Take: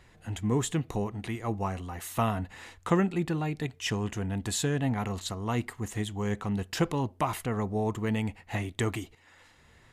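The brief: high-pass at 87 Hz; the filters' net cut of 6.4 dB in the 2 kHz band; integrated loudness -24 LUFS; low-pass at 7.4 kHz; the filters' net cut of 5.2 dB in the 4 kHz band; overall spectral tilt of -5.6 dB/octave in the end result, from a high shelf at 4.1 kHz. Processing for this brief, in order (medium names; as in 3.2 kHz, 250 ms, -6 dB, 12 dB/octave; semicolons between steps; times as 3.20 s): high-pass 87 Hz; low-pass 7.4 kHz; peaking EQ 2 kHz -7.5 dB; peaking EQ 4 kHz -8 dB; treble shelf 4.1 kHz +7 dB; trim +8 dB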